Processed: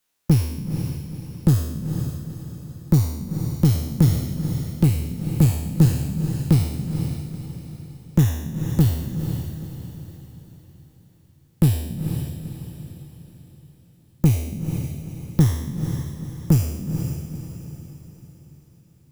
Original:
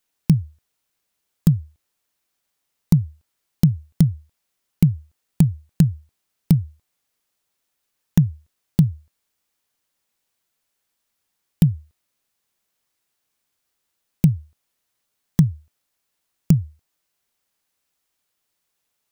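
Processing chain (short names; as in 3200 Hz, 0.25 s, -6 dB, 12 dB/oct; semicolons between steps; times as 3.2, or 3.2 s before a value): spectral trails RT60 0.92 s; one-sided clip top -15.5 dBFS; diffused feedback echo 0.48 s, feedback 44%, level -7 dB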